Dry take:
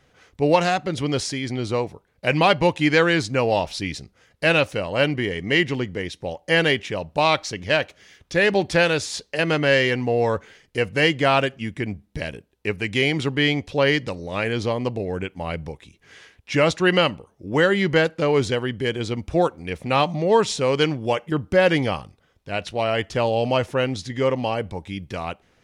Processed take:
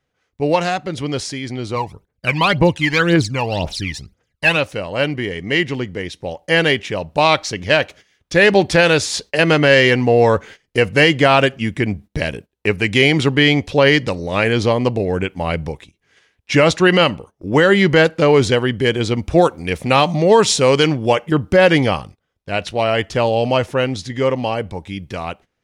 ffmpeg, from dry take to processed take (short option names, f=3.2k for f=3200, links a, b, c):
-filter_complex "[0:a]asplit=3[a][b][c];[a]afade=t=out:st=1.75:d=0.02[d];[b]aphaser=in_gain=1:out_gain=1:delay=1.2:decay=0.74:speed=1.9:type=triangular,afade=t=in:st=1.75:d=0.02,afade=t=out:st=4.55:d=0.02[e];[c]afade=t=in:st=4.55:d=0.02[f];[d][e][f]amix=inputs=3:normalize=0,asettb=1/sr,asplit=3[g][h][i];[g]atrim=end=19.384[j];[h]atrim=start=19.38:end=20.87,asetpts=PTS-STARTPTS,afade=t=in:d=0.004:c=qsin,afade=t=out:st=1.486:d=0.004:c=qsin,highshelf=f=5k:g=6[k];[i]atrim=start=20.866[l];[j][k]acrossfade=d=0.004:c1=hsin:c2=qsin[m];[m][l]acrossfade=d=0.004:c1=qsin:c2=hsin,agate=range=-17dB:threshold=-43dB:ratio=16:detection=peak,dynaudnorm=f=220:g=31:m=11.5dB,alimiter=level_in=4.5dB:limit=-1dB:release=50:level=0:latency=1,volume=-1dB"